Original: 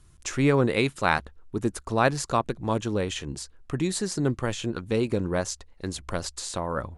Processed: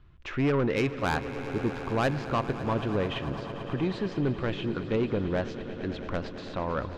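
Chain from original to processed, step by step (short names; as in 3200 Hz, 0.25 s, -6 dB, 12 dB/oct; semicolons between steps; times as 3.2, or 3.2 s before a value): LPF 3200 Hz 24 dB/oct; soft clip -20 dBFS, distortion -11 dB; on a send: swelling echo 0.111 s, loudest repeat 5, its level -16.5 dB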